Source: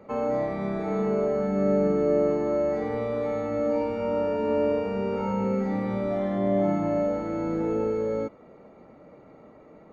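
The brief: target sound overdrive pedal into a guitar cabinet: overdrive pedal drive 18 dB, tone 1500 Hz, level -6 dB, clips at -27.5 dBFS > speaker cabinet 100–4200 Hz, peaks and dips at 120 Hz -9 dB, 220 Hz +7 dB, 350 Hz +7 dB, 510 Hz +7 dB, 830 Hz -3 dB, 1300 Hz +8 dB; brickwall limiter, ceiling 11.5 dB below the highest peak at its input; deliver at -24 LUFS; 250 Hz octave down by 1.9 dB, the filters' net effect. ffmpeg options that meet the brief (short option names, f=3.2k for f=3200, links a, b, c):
-filter_complex "[0:a]equalizer=f=250:t=o:g=-9,alimiter=level_in=3.5dB:limit=-24dB:level=0:latency=1,volume=-3.5dB,asplit=2[a][b];[b]highpass=f=720:p=1,volume=18dB,asoftclip=type=tanh:threshold=-27.5dB[c];[a][c]amix=inputs=2:normalize=0,lowpass=f=1.5k:p=1,volume=-6dB,highpass=100,equalizer=f=120:t=q:w=4:g=-9,equalizer=f=220:t=q:w=4:g=7,equalizer=f=350:t=q:w=4:g=7,equalizer=f=510:t=q:w=4:g=7,equalizer=f=830:t=q:w=4:g=-3,equalizer=f=1.3k:t=q:w=4:g=8,lowpass=f=4.2k:w=0.5412,lowpass=f=4.2k:w=1.3066,volume=5.5dB"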